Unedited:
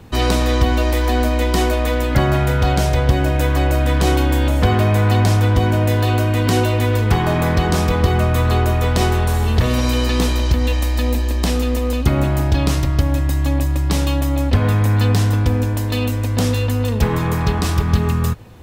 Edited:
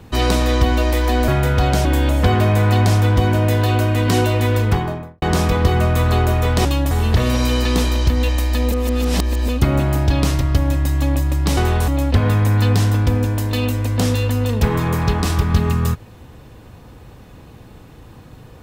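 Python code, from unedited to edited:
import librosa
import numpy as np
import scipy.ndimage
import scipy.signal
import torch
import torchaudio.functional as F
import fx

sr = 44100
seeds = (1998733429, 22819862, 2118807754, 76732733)

y = fx.studio_fade_out(x, sr, start_s=6.97, length_s=0.64)
y = fx.edit(y, sr, fx.cut(start_s=1.28, length_s=1.04),
    fx.cut(start_s=2.89, length_s=1.35),
    fx.swap(start_s=9.04, length_s=0.31, other_s=14.01, other_length_s=0.26),
    fx.reverse_span(start_s=11.16, length_s=0.76), tone=tone)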